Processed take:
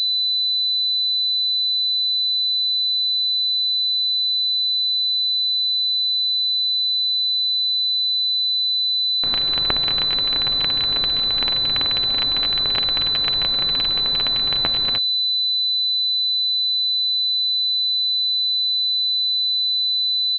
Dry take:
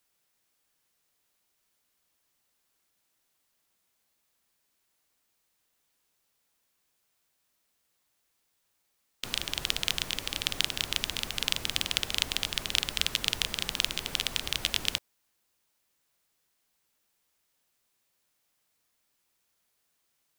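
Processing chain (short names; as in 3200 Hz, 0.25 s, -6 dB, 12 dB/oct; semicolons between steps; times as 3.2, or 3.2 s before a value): comb 7.4 ms, depth 42%; pulse-width modulation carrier 4000 Hz; gain +6.5 dB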